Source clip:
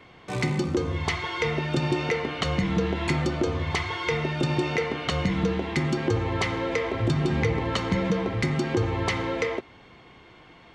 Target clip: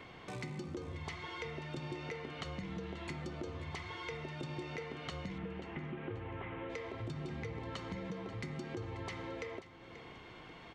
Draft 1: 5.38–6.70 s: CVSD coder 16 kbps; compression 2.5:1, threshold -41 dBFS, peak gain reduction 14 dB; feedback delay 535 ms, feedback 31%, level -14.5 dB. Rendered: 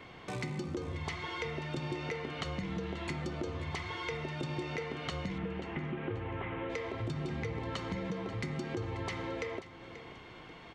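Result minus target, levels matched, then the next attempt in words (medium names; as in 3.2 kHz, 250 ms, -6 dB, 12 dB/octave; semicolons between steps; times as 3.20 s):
compression: peak gain reduction -5 dB
5.38–6.70 s: CVSD coder 16 kbps; compression 2.5:1, threshold -49.5 dBFS, peak gain reduction 19.5 dB; feedback delay 535 ms, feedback 31%, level -14.5 dB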